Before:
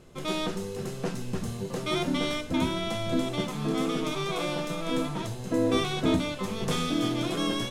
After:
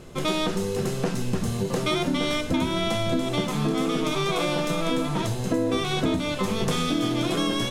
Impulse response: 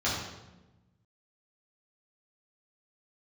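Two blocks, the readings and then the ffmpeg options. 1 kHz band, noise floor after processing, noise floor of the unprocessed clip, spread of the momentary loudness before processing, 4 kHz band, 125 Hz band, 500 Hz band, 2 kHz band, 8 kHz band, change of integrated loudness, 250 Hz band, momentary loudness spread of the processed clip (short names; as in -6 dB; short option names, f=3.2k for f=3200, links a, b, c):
+4.5 dB, -30 dBFS, -37 dBFS, 8 LU, +4.0 dB, +5.0 dB, +4.0 dB, +4.5 dB, +5.0 dB, +4.0 dB, +3.5 dB, 3 LU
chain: -af "acompressor=threshold=-30dB:ratio=6,volume=9dB"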